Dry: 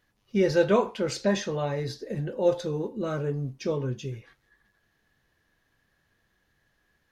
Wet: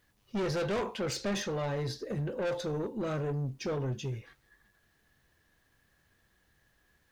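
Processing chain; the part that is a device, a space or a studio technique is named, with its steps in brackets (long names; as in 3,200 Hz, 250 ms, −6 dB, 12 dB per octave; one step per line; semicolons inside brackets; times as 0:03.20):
open-reel tape (soft clipping −29 dBFS, distortion −5 dB; parametric band 63 Hz +4 dB 1.13 octaves; white noise bed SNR 44 dB)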